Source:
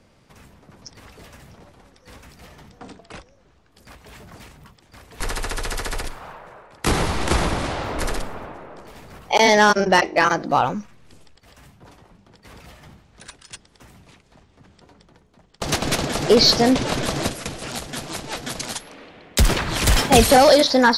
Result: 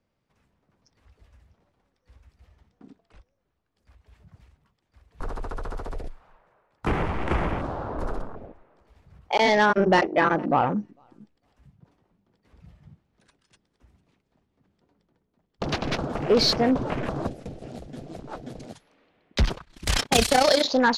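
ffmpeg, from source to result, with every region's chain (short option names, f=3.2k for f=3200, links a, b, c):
-filter_complex "[0:a]asettb=1/sr,asplit=3[a][b][c];[a]atrim=end=9.774[d];[b]atrim=start=9.77:end=15.69,asetpts=PTS-STARTPTS,afade=t=in:d=0.004:c=qsin,afade=t=out:st=5.916:d=0.004:c=qsin,equalizer=f=260:t=o:w=2.1:g=6.5,aecho=1:1:451|902:0.0841|0.0143,atrim=end_sample=261072[e];[c]atrim=start=15.686[f];[d][e]acrossfade=d=0.004:c1=hsin:c2=qsin[g];[g][f]acrossfade=d=0.004:c1=qsin:c2=hsin,asettb=1/sr,asplit=3[h][i][j];[h]atrim=end=19.454[k];[i]atrim=start=19.45:end=20.64,asetpts=PTS-STARTPTS,afade=t=in:d=0.004:c=qsin,afade=t=out:st=1.186:d=0.004:c=qsin,agate=range=-33dB:threshold=-16dB:ratio=3:release=100:detection=peak,highshelf=f=2.1k:g=10.5,tremolo=f=31:d=0.75[l];[j]atrim=start=20.636[m];[k][l]acrossfade=d=0.004:c1=hsin:c2=qsin[n];[n][m]acrossfade=d=0.004:c1=qsin:c2=hsin,afwtdn=0.0398,highshelf=f=7.8k:g=-11,acontrast=27,volume=-9dB"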